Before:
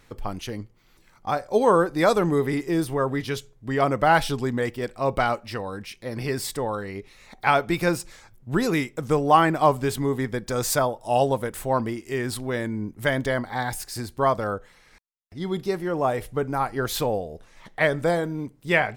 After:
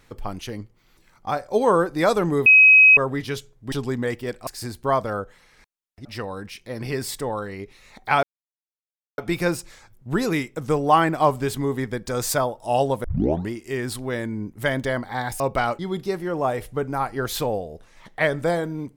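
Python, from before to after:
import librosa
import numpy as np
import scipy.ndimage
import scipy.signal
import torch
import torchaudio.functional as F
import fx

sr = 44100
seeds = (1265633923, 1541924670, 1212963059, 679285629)

y = fx.edit(x, sr, fx.bleep(start_s=2.46, length_s=0.51, hz=2540.0, db=-8.0),
    fx.cut(start_s=3.72, length_s=0.55),
    fx.swap(start_s=5.02, length_s=0.39, other_s=13.81, other_length_s=1.58),
    fx.insert_silence(at_s=7.59, length_s=0.95),
    fx.tape_start(start_s=11.45, length_s=0.46), tone=tone)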